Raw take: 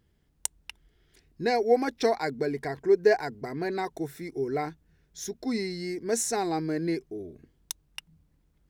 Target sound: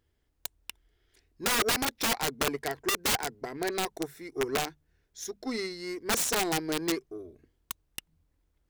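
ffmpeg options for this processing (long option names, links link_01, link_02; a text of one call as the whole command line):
ffmpeg -i in.wav -af "equalizer=frequency=180:width=1.7:gain=-11,bandreject=frequency=50:width_type=h:width=6,bandreject=frequency=100:width_type=h:width=6,bandreject=frequency=150:width_type=h:width=6,bandreject=frequency=200:width_type=h:width=6,aeval=exprs='(mod(14.1*val(0)+1,2)-1)/14.1':channel_layout=same,aeval=exprs='0.075*(cos(1*acos(clip(val(0)/0.075,-1,1)))-cos(1*PI/2))+0.0106*(cos(3*acos(clip(val(0)/0.075,-1,1)))-cos(3*PI/2))+0.00106*(cos(7*acos(clip(val(0)/0.075,-1,1)))-cos(7*PI/2))':channel_layout=same,volume=3dB" out.wav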